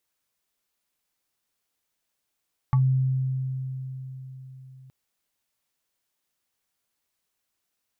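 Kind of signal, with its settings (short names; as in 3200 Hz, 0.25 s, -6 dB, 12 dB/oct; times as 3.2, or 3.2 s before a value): FM tone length 2.17 s, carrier 131 Hz, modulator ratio 7.63, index 0.59, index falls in 0.12 s exponential, decay 4.33 s, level -16 dB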